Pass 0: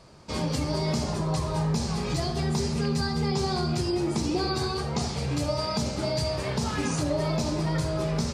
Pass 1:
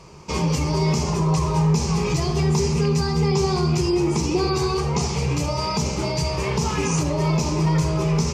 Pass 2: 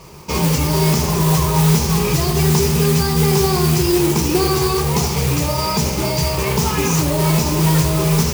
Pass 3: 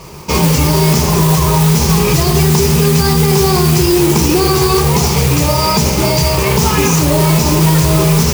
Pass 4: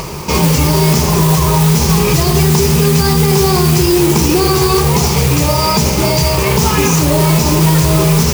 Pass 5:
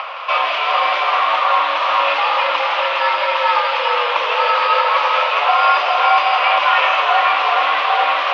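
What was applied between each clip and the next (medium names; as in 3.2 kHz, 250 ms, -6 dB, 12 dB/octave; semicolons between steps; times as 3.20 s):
in parallel at 0 dB: peak limiter -23.5 dBFS, peak gain reduction 7.5 dB; on the sum: rippled EQ curve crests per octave 0.76, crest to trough 9 dB
modulation noise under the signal 10 dB; trim +4.5 dB
peak limiter -9 dBFS, peak gain reduction 6 dB; trim +7 dB
upward compressor, threshold -15 dBFS
mistuned SSB +140 Hz 580–3200 Hz; two-band feedback delay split 2.2 kHz, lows 416 ms, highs 165 ms, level -3.5 dB; trim +3 dB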